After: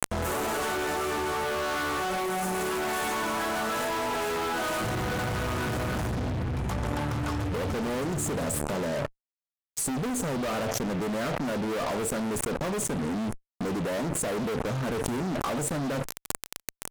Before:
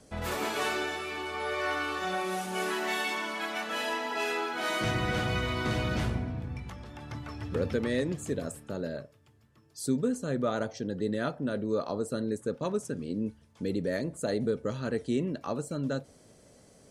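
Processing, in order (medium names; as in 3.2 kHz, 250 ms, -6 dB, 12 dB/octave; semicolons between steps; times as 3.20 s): high-order bell 3.2 kHz -13.5 dB; feedback comb 120 Hz, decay 1.2 s, harmonics odd, mix 30%; fuzz box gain 49 dB, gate -51 dBFS; level flattener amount 100%; trim -15.5 dB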